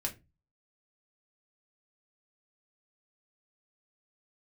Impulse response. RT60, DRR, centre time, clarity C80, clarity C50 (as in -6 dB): 0.25 s, 0.0 dB, 12 ms, 23.0 dB, 16.0 dB